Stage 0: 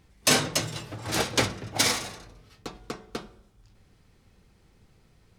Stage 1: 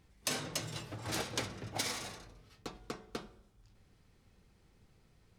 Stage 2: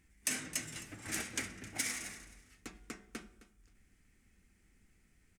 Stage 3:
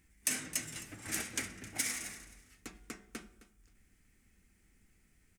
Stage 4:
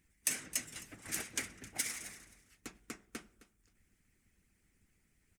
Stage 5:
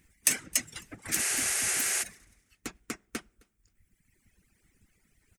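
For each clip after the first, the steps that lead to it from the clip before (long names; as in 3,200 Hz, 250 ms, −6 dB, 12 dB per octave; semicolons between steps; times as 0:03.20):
downward compressor 6 to 1, threshold −27 dBFS, peak gain reduction 10.5 dB; level −6 dB
octave-band graphic EQ 125/250/500/1,000/2,000/4,000/8,000 Hz −11/+4/−10/−10/+8/−11/+7 dB; repeating echo 263 ms, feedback 21%, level −17 dB
high-shelf EQ 11,000 Hz +7.5 dB
harmonic and percussive parts rebalanced harmonic −12 dB
reverb reduction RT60 1.6 s; healed spectral selection 0:01.21–0:02.00, 350–12,000 Hz before; level +9 dB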